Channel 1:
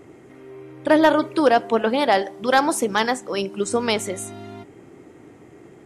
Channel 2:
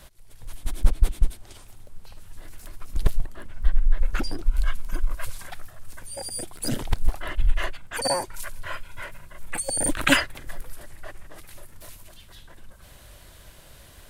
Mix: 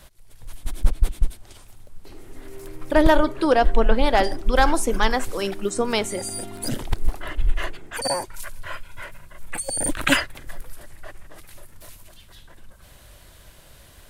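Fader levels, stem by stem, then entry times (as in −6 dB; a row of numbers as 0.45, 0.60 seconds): −1.5, 0.0 decibels; 2.05, 0.00 seconds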